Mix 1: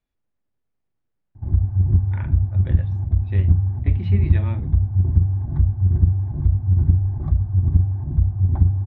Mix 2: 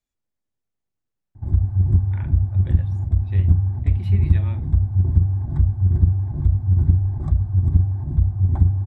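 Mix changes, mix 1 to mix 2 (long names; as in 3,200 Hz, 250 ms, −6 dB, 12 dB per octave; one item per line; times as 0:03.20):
speech −6.0 dB
master: remove high-frequency loss of the air 220 metres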